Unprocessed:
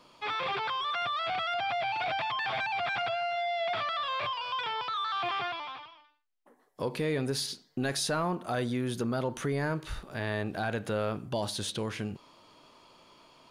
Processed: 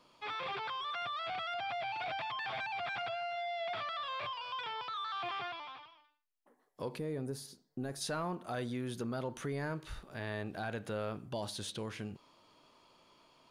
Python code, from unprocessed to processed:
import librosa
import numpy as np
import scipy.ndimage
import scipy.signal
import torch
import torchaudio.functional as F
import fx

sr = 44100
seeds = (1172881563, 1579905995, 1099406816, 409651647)

y = fx.peak_eq(x, sr, hz=3000.0, db=-14.0, octaves=2.3, at=(6.97, 8.0), fade=0.02)
y = y * librosa.db_to_amplitude(-7.0)